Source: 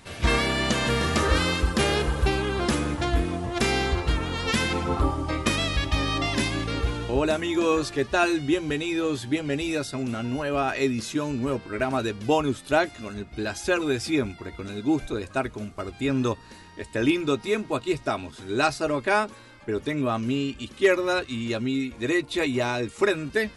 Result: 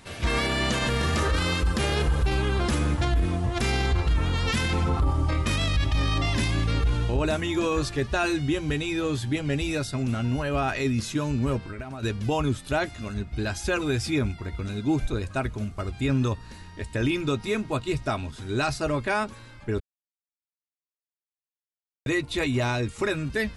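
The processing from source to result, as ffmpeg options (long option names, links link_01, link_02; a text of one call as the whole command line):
ffmpeg -i in.wav -filter_complex "[0:a]asettb=1/sr,asplit=3[link_01][link_02][link_03];[link_01]atrim=end=11.584[link_04];[link_02]atrim=start=11.58:end=12.03,asetpts=PTS-STARTPTS,afade=type=in:duration=0.004:curve=qsin,afade=type=out:start_time=0.446:duration=0.004:curve=qsin,acompressor=threshold=-33dB:ratio=8:attack=3.2:release=140:knee=1:detection=peak[link_05];[link_03]atrim=start=12.026[link_06];[link_04][link_05]acrossfade=duration=0.004:curve1=hsin:curve2=qsin[link_07];[link_07][link_06]acrossfade=duration=0.004:curve1=qsin:curve2=hsin,asplit=3[link_08][link_09][link_10];[link_08]atrim=end=19.8,asetpts=PTS-STARTPTS,afade=type=out:start_time=19.796:duration=0.004:curve=hsin[link_11];[link_09]atrim=start=19.8:end=22.06,asetpts=PTS-STARTPTS,volume=0[link_12];[link_10]atrim=start=22.06,asetpts=PTS-STARTPTS,afade=type=in:duration=0.004:curve=hsin[link_13];[link_11][link_12][link_13]concat=n=3:v=0:a=1,asubboost=boost=3:cutoff=170,alimiter=limit=-16dB:level=0:latency=1:release=14" out.wav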